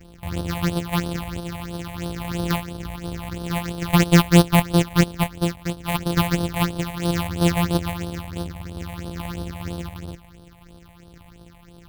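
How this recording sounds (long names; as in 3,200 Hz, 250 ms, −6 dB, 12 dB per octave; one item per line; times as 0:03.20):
a buzz of ramps at a fixed pitch in blocks of 256 samples
phaser sweep stages 6, 3 Hz, lowest notch 360–2,100 Hz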